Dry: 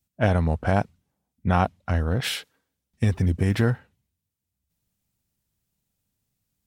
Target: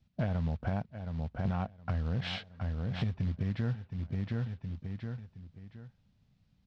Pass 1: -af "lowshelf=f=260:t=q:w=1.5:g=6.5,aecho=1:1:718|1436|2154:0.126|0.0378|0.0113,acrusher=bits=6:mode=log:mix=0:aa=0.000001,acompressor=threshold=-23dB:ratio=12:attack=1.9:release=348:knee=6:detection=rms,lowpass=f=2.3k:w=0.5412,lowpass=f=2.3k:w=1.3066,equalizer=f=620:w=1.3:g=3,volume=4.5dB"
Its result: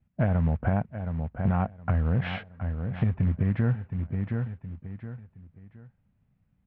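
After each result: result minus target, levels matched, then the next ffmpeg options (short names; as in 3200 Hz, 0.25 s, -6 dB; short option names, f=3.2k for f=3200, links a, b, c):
4000 Hz band -11.5 dB; compressor: peak gain reduction -8 dB
-af "lowshelf=f=260:t=q:w=1.5:g=6.5,aecho=1:1:718|1436|2154:0.126|0.0378|0.0113,acrusher=bits=6:mode=log:mix=0:aa=0.000001,acompressor=threshold=-23dB:ratio=12:attack=1.9:release=348:knee=6:detection=rms,lowpass=f=4.6k:w=0.5412,lowpass=f=4.6k:w=1.3066,equalizer=f=620:w=1.3:g=3,volume=4.5dB"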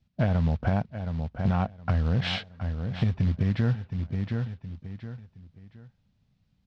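compressor: peak gain reduction -8 dB
-af "lowshelf=f=260:t=q:w=1.5:g=6.5,aecho=1:1:718|1436|2154:0.126|0.0378|0.0113,acrusher=bits=6:mode=log:mix=0:aa=0.000001,acompressor=threshold=-31.5dB:ratio=12:attack=1.9:release=348:knee=6:detection=rms,lowpass=f=4.6k:w=0.5412,lowpass=f=4.6k:w=1.3066,equalizer=f=620:w=1.3:g=3,volume=4.5dB"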